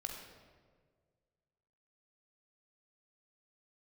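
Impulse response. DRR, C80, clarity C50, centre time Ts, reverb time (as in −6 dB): 1.5 dB, 5.0 dB, 3.5 dB, 52 ms, 1.7 s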